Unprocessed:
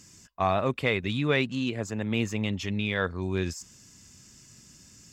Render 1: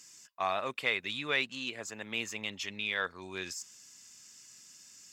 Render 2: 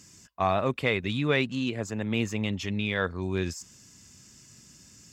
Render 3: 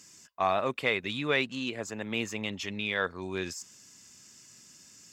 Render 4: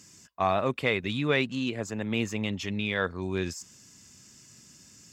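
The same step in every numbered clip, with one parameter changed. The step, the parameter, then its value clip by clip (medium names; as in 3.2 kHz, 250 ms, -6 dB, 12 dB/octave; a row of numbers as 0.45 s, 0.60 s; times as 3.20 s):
high-pass, cutoff frequency: 1.5 kHz, 46 Hz, 460 Hz, 130 Hz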